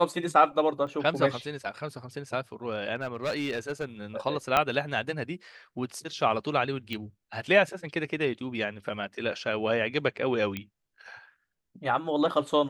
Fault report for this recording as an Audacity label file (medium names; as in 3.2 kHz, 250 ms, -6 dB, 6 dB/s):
0.870000	0.870000	dropout 2.1 ms
2.950000	3.850000	clipped -25.5 dBFS
4.570000	4.570000	pop -9 dBFS
6.930000	6.930000	pop -20 dBFS
10.570000	10.570000	pop -19 dBFS